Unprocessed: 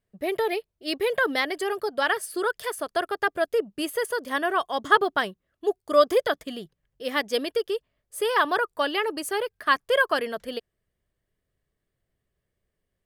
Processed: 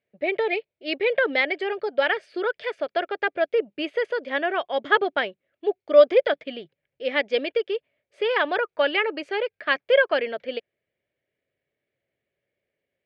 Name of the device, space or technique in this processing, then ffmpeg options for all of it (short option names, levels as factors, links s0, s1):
kitchen radio: -filter_complex "[0:a]asettb=1/sr,asplit=3[s0][s1][s2];[s0]atrim=end=8.654[s3];[s1]atrim=start=8.65:end=9.19,asetpts=PTS-STARTPTS,afade=t=in:d=0.004:c=qsin,afade=t=out:st=0.536:d=0.004:c=qsin,equalizer=f=1400:t=o:w=0.77:g=4.5[s4];[s2]atrim=start=9.186[s5];[s3][s4]acrossfade=d=0.004:c1=hsin:c2=qsin[s6];[s6][s5]acrossfade=d=0.004:c1=qsin:c2=hsin,highpass=170,equalizer=f=190:t=q:w=4:g=-7,equalizer=f=560:t=q:w=4:g=7,equalizer=f=1100:t=q:w=4:g=-9,equalizer=f=2300:t=q:w=4:g=10,lowpass=f=3900:w=0.5412,lowpass=f=3900:w=1.3066"